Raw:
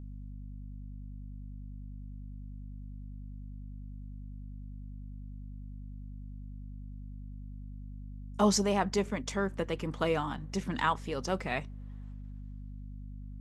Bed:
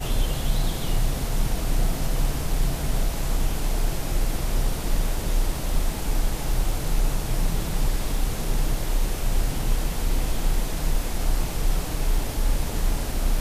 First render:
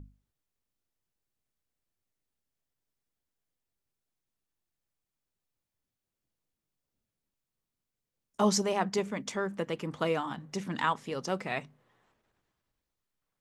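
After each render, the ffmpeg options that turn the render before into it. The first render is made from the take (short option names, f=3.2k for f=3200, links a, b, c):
-af "bandreject=f=50:t=h:w=6,bandreject=f=100:t=h:w=6,bandreject=f=150:t=h:w=6,bandreject=f=200:t=h:w=6,bandreject=f=250:t=h:w=6"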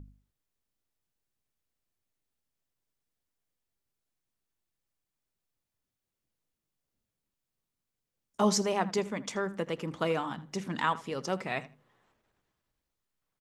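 -filter_complex "[0:a]asplit=2[a][b];[b]adelay=80,lowpass=f=4.6k:p=1,volume=-17.5dB,asplit=2[c][d];[d]adelay=80,lowpass=f=4.6k:p=1,volume=0.18[e];[a][c][e]amix=inputs=3:normalize=0"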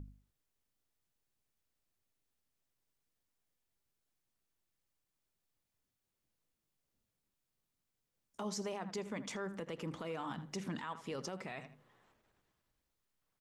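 -af "acompressor=threshold=-35dB:ratio=10,alimiter=level_in=8dB:limit=-24dB:level=0:latency=1:release=14,volume=-8dB"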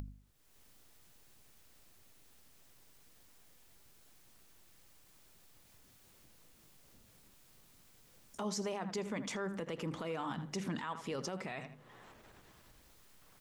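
-filter_complex "[0:a]asplit=2[a][b];[b]alimiter=level_in=18.5dB:limit=-24dB:level=0:latency=1:release=46,volume=-18.5dB,volume=-0.5dB[c];[a][c]amix=inputs=2:normalize=0,acompressor=mode=upward:threshold=-47dB:ratio=2.5"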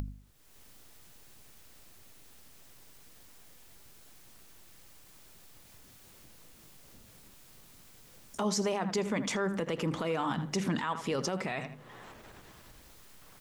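-af "volume=7.5dB"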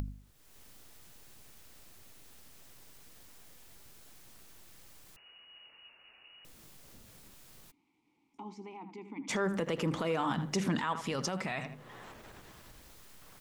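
-filter_complex "[0:a]asettb=1/sr,asplit=3[a][b][c];[a]atrim=end=5.164[d];[b]atrim=start=5.16:end=6.45,asetpts=PTS-STARTPTS,afade=t=in:d=0.004:c=qsin,afade=t=out:st=1.286:d=0.004:c=qsin,lowpass=f=2.5k:t=q:w=0.5098,lowpass=f=2.5k:t=q:w=0.6013,lowpass=f=2.5k:t=q:w=0.9,lowpass=f=2.5k:t=q:w=2.563,afreqshift=-2900[e];[c]atrim=start=6.446[f];[d][e]acrossfade=d=0.004:c1=hsin:c2=qsin[g];[g][f]acrossfade=d=0.004:c1=qsin:c2=hsin,asplit=3[h][i][j];[h]afade=t=out:st=7.7:d=0.02[k];[i]asplit=3[l][m][n];[l]bandpass=f=300:t=q:w=8,volume=0dB[o];[m]bandpass=f=870:t=q:w=8,volume=-6dB[p];[n]bandpass=f=2.24k:t=q:w=8,volume=-9dB[q];[o][p][q]amix=inputs=3:normalize=0,afade=t=in:st=7.7:d=0.02,afade=t=out:st=9.28:d=0.02[r];[j]afade=t=in:st=9.28:d=0.02[s];[k][r][s]amix=inputs=3:normalize=0,asettb=1/sr,asplit=3[t][u][v];[t]atrim=end=11.014[w];[u]atrim=start=11.01:end=11.66,asetpts=PTS-STARTPTS,afade=t=in:d=0.004:c=qsin,afade=t=out:st=0.646:d=0.004:c=qsin,equalizer=f=420:w=1.5:g=-6[x];[v]atrim=start=11.656[y];[w][x]acrossfade=d=0.004:c1=hsin:c2=qsin[z];[z][y]acrossfade=d=0.004:c1=qsin:c2=hsin"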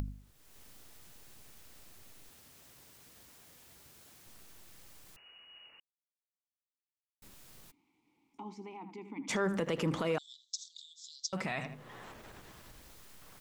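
-filter_complex "[0:a]asettb=1/sr,asplit=3[a][b][c];[a]atrim=end=2.294[d];[b]atrim=start=2.29:end=4.27,asetpts=PTS-STARTPTS,afade=t=in:d=0.004:c=qsin,afade=t=out:st=1.976:d=0.004:c=qsin,highpass=48[e];[c]atrim=start=4.266[f];[d][e]acrossfade=d=0.004:c1=hsin:c2=qsin[g];[g][f]acrossfade=d=0.004:c1=qsin:c2=hsin,asettb=1/sr,asplit=3[h][i][j];[h]atrim=end=10.184[k];[i]atrim=start=10.18:end=11.33,asetpts=PTS-STARTPTS,afade=t=in:d=0.004:c=qsin,afade=t=out:st=1.146:d=0.004:c=qsin,asuperpass=centerf=5300:order=20:qfactor=1.2[l];[j]atrim=start=11.326[m];[k][l]acrossfade=d=0.004:c1=hsin:c2=qsin[n];[n][m]acrossfade=d=0.004:c1=qsin:c2=hsin,asplit=3[o][p][q];[o]atrim=end=5.8,asetpts=PTS-STARTPTS,afade=t=out:st=5.796:d=0.004:c=hsin[r];[p]atrim=start=5.8:end=7.22,asetpts=PTS-STARTPTS,volume=0[s];[q]atrim=start=7.22,asetpts=PTS-STARTPTS,afade=t=in:d=0.004:c=hsin[t];[r][s][t]concat=n=3:v=0:a=1"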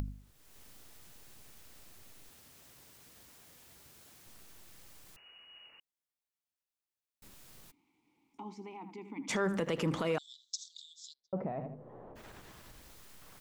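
-filter_complex "[0:a]asplit=3[a][b][c];[a]afade=t=out:st=11.12:d=0.02[d];[b]lowpass=f=590:t=q:w=1.6,afade=t=in:st=11.12:d=0.02,afade=t=out:st=12.15:d=0.02[e];[c]afade=t=in:st=12.15:d=0.02[f];[d][e][f]amix=inputs=3:normalize=0"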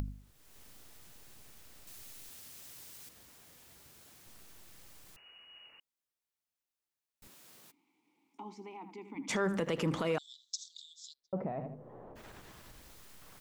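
-filter_complex "[0:a]asettb=1/sr,asplit=3[a][b][c];[a]atrim=end=1.874[d];[b]atrim=start=1.87:end=3.09,asetpts=PTS-STARTPTS,afade=t=in:d=0.004:c=qsin,afade=t=out:st=1.216:d=0.004:c=qsin,highshelf=f=2.4k:g=8.5[e];[c]atrim=start=3.086[f];[d][e]acrossfade=d=0.004:c1=hsin:c2=qsin[g];[g][f]acrossfade=d=0.004:c1=qsin:c2=hsin,asettb=1/sr,asplit=3[h][i][j];[h]atrim=end=7.274[k];[i]atrim=start=7.27:end=9.15,asetpts=PTS-STARTPTS,afade=t=in:d=0.004:c=qsin,afade=t=out:st=1.876:d=0.004:c=qsin,highpass=210[l];[j]atrim=start=9.146[m];[k][l]acrossfade=d=0.004:c1=hsin:c2=qsin[n];[n][m]acrossfade=d=0.004:c1=qsin:c2=hsin"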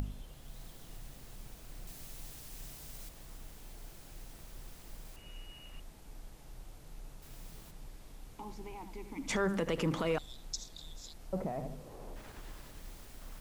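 -filter_complex "[1:a]volume=-26.5dB[a];[0:a][a]amix=inputs=2:normalize=0"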